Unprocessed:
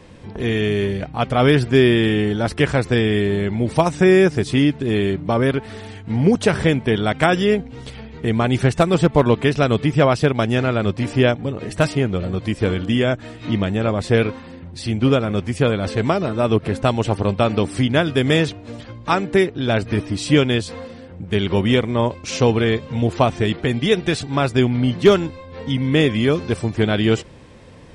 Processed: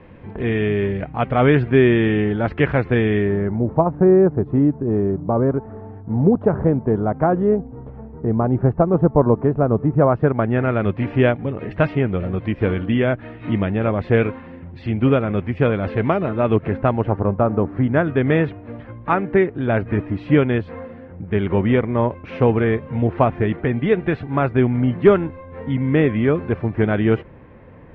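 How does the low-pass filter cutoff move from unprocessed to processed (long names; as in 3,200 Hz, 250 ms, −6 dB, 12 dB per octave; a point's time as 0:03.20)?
low-pass filter 24 dB per octave
0:03.15 2,500 Hz
0:03.67 1,100 Hz
0:09.88 1,100 Hz
0:10.87 2,500 Hz
0:16.56 2,500 Hz
0:17.51 1,300 Hz
0:18.20 2,100 Hz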